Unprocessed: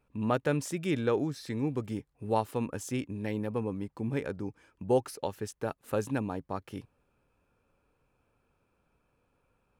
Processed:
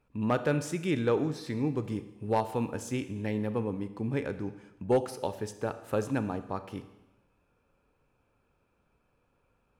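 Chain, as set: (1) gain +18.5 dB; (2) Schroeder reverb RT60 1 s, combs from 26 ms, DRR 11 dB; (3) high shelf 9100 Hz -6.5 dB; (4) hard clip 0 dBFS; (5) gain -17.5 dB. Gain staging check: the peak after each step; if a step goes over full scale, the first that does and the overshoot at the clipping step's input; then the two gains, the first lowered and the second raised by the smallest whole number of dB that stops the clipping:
+4.5, +4.5, +4.5, 0.0, -17.5 dBFS; step 1, 4.5 dB; step 1 +13.5 dB, step 5 -12.5 dB

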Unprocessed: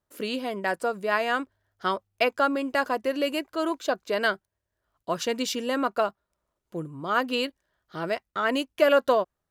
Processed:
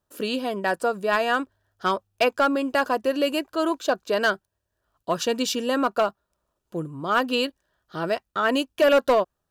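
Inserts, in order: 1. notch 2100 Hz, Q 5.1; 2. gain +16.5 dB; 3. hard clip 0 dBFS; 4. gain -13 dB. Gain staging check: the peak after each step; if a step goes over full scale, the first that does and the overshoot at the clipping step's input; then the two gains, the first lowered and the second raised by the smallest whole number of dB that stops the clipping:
-8.5, +8.0, 0.0, -13.0 dBFS; step 2, 8.0 dB; step 2 +8.5 dB, step 4 -5 dB

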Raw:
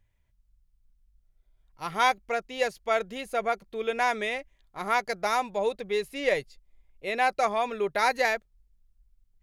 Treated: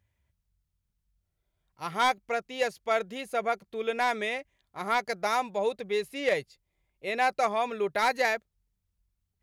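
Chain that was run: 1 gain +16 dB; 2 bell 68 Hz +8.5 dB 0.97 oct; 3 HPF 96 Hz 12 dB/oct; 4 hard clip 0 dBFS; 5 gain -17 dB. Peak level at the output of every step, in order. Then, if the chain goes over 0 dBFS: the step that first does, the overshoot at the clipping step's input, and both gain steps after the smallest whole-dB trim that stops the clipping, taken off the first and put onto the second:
+5.5, +5.5, +5.5, 0.0, -17.0 dBFS; step 1, 5.5 dB; step 1 +10 dB, step 5 -11 dB

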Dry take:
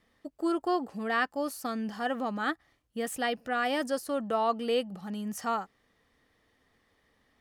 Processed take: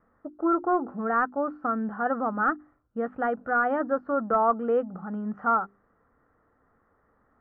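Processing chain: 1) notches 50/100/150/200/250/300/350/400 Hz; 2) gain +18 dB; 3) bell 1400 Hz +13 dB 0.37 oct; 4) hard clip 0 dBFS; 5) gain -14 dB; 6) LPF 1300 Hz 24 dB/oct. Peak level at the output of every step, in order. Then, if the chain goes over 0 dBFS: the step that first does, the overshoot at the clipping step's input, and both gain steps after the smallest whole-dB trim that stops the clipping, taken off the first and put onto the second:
-16.0, +2.0, +6.0, 0.0, -14.0, -13.5 dBFS; step 2, 6.0 dB; step 2 +12 dB, step 5 -8 dB

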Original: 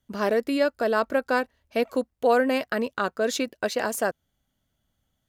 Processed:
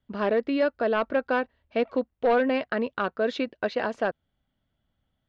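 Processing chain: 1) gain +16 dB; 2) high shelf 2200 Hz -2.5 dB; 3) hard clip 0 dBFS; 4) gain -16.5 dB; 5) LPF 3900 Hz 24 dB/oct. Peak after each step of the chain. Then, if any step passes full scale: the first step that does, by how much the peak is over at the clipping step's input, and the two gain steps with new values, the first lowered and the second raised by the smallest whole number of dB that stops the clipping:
+6.0, +5.5, 0.0, -16.5, -16.0 dBFS; step 1, 5.5 dB; step 1 +10 dB, step 4 -10.5 dB

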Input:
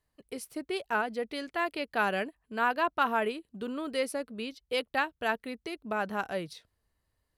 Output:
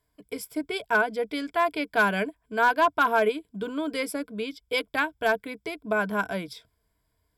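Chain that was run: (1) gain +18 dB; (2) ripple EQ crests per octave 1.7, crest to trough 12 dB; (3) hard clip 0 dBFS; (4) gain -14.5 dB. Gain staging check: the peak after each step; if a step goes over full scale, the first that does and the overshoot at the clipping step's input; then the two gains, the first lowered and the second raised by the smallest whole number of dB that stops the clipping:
+3.5, +5.5, 0.0, -14.5 dBFS; step 1, 5.5 dB; step 1 +12 dB, step 4 -8.5 dB

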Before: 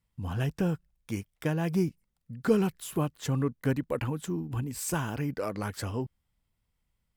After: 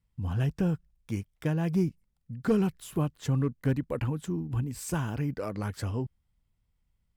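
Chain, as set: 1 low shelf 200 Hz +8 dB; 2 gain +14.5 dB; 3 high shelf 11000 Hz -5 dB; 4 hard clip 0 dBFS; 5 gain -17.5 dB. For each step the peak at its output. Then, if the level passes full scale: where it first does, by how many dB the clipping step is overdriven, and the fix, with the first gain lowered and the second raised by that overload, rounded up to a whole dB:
-10.0, +4.5, +4.5, 0.0, -17.5 dBFS; step 2, 4.5 dB; step 2 +9.5 dB, step 5 -12.5 dB

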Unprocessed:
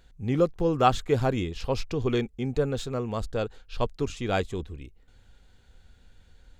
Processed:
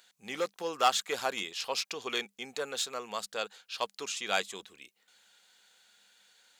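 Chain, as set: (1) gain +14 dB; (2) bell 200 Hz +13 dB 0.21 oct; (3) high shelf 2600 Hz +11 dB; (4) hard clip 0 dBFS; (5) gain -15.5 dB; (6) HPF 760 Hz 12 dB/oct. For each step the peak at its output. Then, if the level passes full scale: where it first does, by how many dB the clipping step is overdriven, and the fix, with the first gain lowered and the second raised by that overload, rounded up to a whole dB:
+5.5, +5.5, +8.5, 0.0, -15.5, -10.0 dBFS; step 1, 8.5 dB; step 1 +5 dB, step 5 -6.5 dB

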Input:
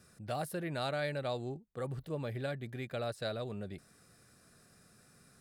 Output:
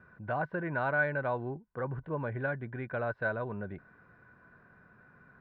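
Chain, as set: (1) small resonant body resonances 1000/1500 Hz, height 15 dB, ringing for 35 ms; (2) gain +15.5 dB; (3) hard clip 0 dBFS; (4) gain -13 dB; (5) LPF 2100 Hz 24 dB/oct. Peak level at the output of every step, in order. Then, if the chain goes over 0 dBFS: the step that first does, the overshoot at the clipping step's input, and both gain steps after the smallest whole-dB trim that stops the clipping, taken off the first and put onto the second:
-19.0, -3.5, -3.5, -16.5, -17.5 dBFS; no overload

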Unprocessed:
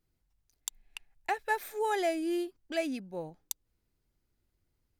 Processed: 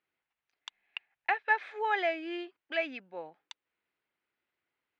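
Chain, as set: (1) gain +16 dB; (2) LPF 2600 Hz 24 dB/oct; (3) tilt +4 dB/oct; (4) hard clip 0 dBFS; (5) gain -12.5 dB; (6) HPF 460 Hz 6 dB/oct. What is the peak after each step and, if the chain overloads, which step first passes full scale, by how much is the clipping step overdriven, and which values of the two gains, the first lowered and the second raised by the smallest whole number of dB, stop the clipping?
-0.5, -2.0, -2.0, -2.0, -14.5, -15.5 dBFS; no overload

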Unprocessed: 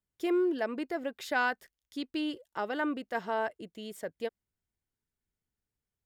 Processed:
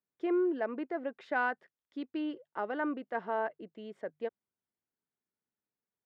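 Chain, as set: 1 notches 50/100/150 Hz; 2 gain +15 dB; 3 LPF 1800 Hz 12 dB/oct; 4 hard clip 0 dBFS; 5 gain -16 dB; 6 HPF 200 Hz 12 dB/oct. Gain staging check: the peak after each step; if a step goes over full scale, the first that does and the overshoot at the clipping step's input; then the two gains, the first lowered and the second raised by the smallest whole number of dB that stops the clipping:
-17.0, -2.0, -3.5, -3.5, -19.5, -18.5 dBFS; no overload

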